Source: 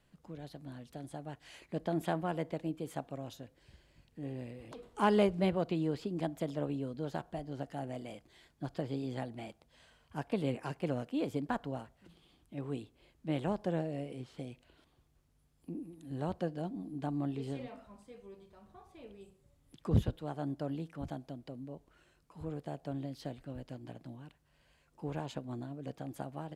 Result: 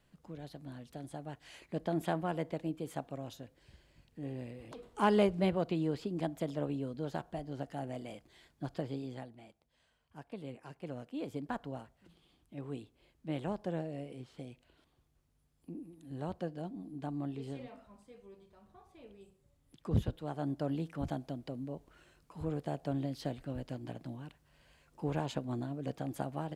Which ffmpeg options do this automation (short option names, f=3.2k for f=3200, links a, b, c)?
-af "volume=15dB,afade=t=out:st=8.75:d=0.63:silence=0.281838,afade=t=in:st=10.64:d=0.97:silence=0.398107,afade=t=in:st=19.9:d=1.07:silence=0.446684"